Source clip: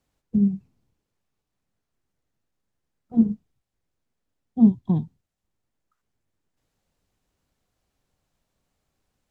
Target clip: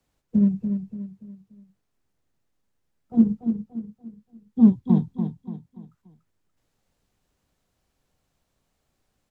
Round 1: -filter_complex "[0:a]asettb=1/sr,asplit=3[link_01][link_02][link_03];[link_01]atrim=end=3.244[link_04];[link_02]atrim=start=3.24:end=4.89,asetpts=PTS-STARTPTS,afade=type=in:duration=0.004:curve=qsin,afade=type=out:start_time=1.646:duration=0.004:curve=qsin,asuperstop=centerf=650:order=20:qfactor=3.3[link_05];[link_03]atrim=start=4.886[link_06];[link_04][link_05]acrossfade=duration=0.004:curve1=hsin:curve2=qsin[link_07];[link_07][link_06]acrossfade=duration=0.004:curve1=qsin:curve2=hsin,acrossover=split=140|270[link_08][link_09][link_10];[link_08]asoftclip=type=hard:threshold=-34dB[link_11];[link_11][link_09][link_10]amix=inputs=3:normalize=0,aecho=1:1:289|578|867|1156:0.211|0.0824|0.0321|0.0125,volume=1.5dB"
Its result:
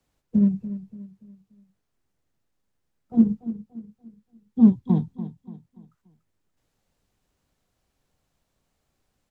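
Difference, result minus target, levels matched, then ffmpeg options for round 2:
echo-to-direct −5.5 dB
-filter_complex "[0:a]asettb=1/sr,asplit=3[link_01][link_02][link_03];[link_01]atrim=end=3.244[link_04];[link_02]atrim=start=3.24:end=4.89,asetpts=PTS-STARTPTS,afade=type=in:duration=0.004:curve=qsin,afade=type=out:start_time=1.646:duration=0.004:curve=qsin,asuperstop=centerf=650:order=20:qfactor=3.3[link_05];[link_03]atrim=start=4.886[link_06];[link_04][link_05]acrossfade=duration=0.004:curve1=hsin:curve2=qsin[link_07];[link_07][link_06]acrossfade=duration=0.004:curve1=qsin:curve2=hsin,acrossover=split=140|270[link_08][link_09][link_10];[link_08]asoftclip=type=hard:threshold=-34dB[link_11];[link_11][link_09][link_10]amix=inputs=3:normalize=0,aecho=1:1:289|578|867|1156:0.422|0.164|0.0641|0.025,volume=1.5dB"

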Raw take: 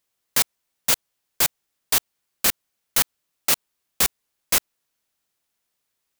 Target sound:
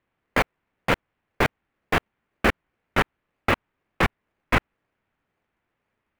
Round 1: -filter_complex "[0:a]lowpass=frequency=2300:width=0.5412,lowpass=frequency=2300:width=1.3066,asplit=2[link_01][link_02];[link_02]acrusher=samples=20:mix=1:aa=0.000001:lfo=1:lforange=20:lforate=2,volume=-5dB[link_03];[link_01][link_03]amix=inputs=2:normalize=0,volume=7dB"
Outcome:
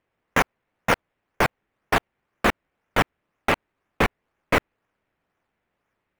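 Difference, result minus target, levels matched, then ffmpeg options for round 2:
sample-and-hold swept by an LFO: distortion −8 dB
-filter_complex "[0:a]lowpass=frequency=2300:width=0.5412,lowpass=frequency=2300:width=1.3066,asplit=2[link_01][link_02];[link_02]acrusher=samples=46:mix=1:aa=0.000001:lfo=1:lforange=46:lforate=2,volume=-5dB[link_03];[link_01][link_03]amix=inputs=2:normalize=0,volume=7dB"

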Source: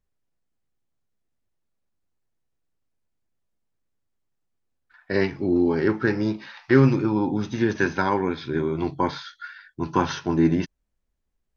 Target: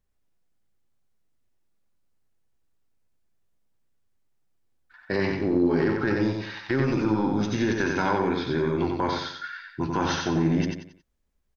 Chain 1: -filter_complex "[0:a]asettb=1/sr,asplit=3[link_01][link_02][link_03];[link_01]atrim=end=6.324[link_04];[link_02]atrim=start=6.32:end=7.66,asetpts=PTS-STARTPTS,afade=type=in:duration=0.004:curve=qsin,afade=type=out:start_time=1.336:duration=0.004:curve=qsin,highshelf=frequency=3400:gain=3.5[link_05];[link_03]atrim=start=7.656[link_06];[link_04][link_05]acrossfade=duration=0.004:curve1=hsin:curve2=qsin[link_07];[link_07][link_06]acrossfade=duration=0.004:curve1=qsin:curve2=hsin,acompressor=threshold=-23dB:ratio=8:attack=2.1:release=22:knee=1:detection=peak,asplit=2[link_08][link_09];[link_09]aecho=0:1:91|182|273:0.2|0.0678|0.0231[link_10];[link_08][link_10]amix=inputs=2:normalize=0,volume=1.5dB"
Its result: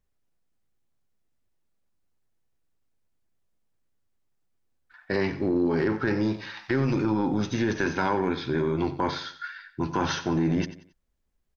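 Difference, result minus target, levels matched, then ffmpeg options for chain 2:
echo-to-direct −10.5 dB
-filter_complex "[0:a]asettb=1/sr,asplit=3[link_01][link_02][link_03];[link_01]atrim=end=6.324[link_04];[link_02]atrim=start=6.32:end=7.66,asetpts=PTS-STARTPTS,afade=type=in:duration=0.004:curve=qsin,afade=type=out:start_time=1.336:duration=0.004:curve=qsin,highshelf=frequency=3400:gain=3.5[link_05];[link_03]atrim=start=7.656[link_06];[link_04][link_05]acrossfade=duration=0.004:curve1=hsin:curve2=qsin[link_07];[link_07][link_06]acrossfade=duration=0.004:curve1=qsin:curve2=hsin,acompressor=threshold=-23dB:ratio=8:attack=2.1:release=22:knee=1:detection=peak,asplit=2[link_08][link_09];[link_09]aecho=0:1:91|182|273|364:0.668|0.227|0.0773|0.0263[link_10];[link_08][link_10]amix=inputs=2:normalize=0,volume=1.5dB"

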